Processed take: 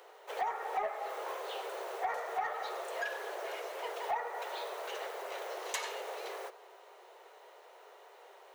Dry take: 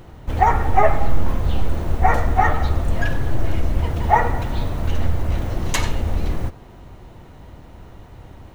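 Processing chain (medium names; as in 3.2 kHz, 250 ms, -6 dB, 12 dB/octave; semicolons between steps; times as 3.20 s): steep high-pass 390 Hz 96 dB/octave; compression 4:1, threshold -26 dBFS, peak gain reduction 14 dB; saturation -18.5 dBFS, distortion -20 dB; trim -6 dB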